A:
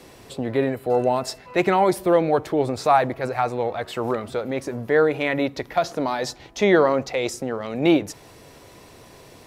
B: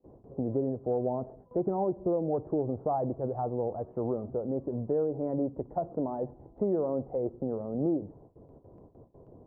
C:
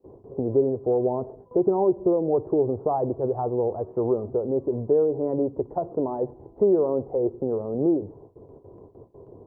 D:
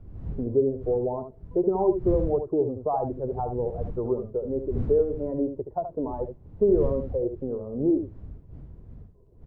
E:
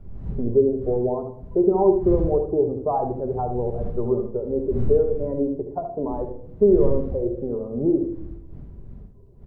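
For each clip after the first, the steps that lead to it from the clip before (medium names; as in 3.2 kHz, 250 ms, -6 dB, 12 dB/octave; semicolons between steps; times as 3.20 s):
Bessel low-pass 510 Hz, order 6; gate with hold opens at -41 dBFS; compression 5:1, threshold -23 dBFS, peak gain reduction 8.5 dB; trim -2.5 dB
fifteen-band graphic EQ 100 Hz +6 dB, 400 Hz +11 dB, 1 kHz +7 dB
expander on every frequency bin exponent 1.5; wind noise 95 Hz -37 dBFS; delay 74 ms -8.5 dB
reverberation RT60 0.70 s, pre-delay 5 ms, DRR 6.5 dB; trim +2.5 dB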